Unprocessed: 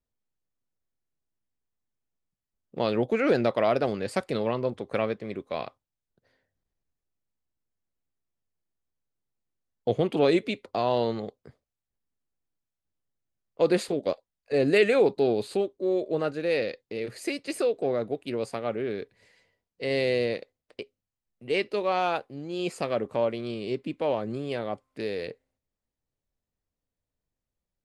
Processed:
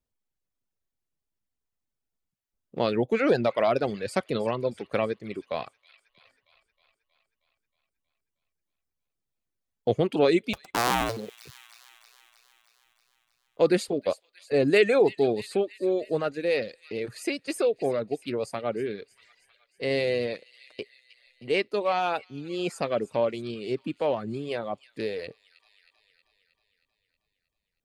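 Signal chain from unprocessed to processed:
0:10.53–0:11.17: sub-harmonics by changed cycles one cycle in 2, inverted
delay with a high-pass on its return 316 ms, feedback 62%, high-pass 2,100 Hz, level −13 dB
reverb reduction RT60 0.83 s
level +1.5 dB

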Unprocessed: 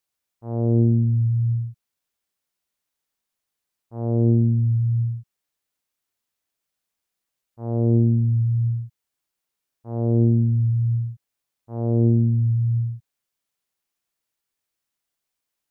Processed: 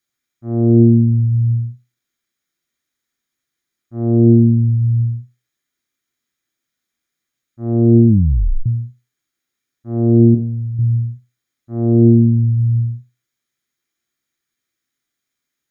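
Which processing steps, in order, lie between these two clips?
0:10.34–0:10.79: low shelf with overshoot 400 Hz −7 dB, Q 3
convolution reverb RT60 0.20 s, pre-delay 3 ms, DRR 3 dB
0:08.08: tape stop 0.58 s
level −1 dB

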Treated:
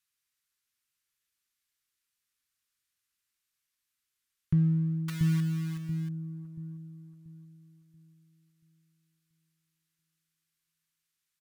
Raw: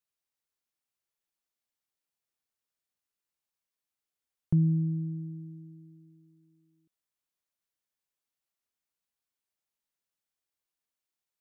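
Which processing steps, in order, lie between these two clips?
in parallel at −8.5 dB: asymmetric clip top −30 dBFS, bottom −21.5 dBFS
on the sum: downsampling to 32,000 Hz
0:05.08–0:06.09: log-companded quantiser 4 bits
drawn EQ curve 130 Hz 0 dB, 190 Hz −4 dB, 360 Hz −6 dB, 680 Hz −18 dB, 1,100 Hz 0 dB, 1,600 Hz +5 dB
on a send: delay with a low-pass on its return 683 ms, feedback 35%, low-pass 430 Hz, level −3.5 dB

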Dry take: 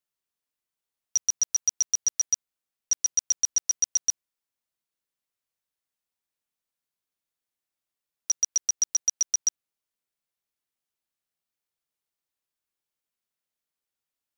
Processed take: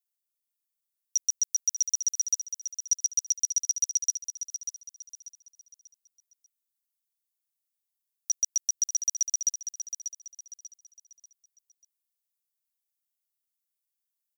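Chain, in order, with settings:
first-order pre-emphasis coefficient 0.97
on a send: repeating echo 590 ms, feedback 34%, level −9 dB

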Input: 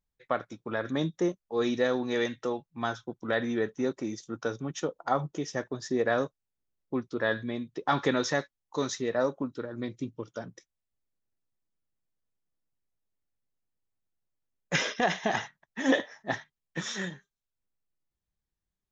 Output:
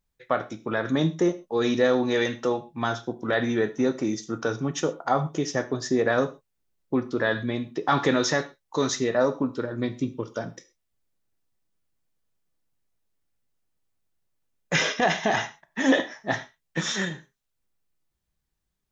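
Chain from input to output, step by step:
in parallel at +1.5 dB: brickwall limiter −22.5 dBFS, peak gain reduction 10.5 dB
on the sum: reverb whose tail is shaped and stops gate 150 ms falling, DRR 9.5 dB

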